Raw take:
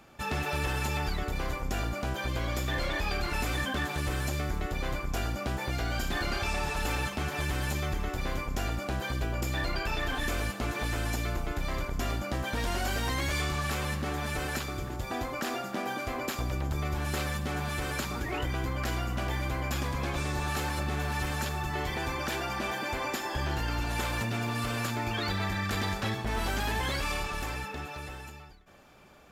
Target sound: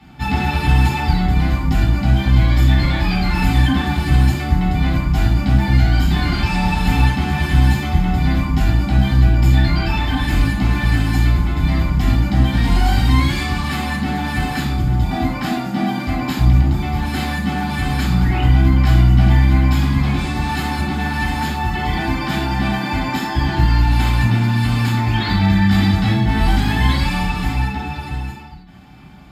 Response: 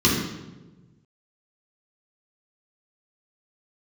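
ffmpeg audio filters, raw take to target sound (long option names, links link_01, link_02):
-filter_complex "[1:a]atrim=start_sample=2205,atrim=end_sample=3528,asetrate=32193,aresample=44100[link_01];[0:a][link_01]afir=irnorm=-1:irlink=0,volume=-9.5dB"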